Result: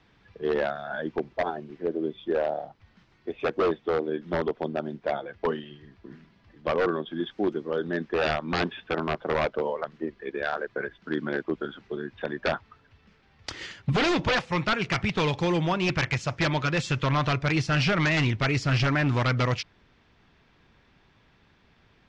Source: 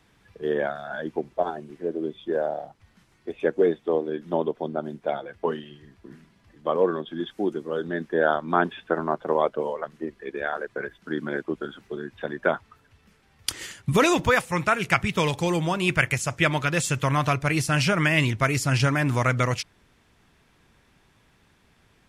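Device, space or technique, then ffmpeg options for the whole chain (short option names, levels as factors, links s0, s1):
synthesiser wavefolder: -af "aeval=exprs='0.133*(abs(mod(val(0)/0.133+3,4)-2)-1)':c=same,lowpass=f=5100:w=0.5412,lowpass=f=5100:w=1.3066"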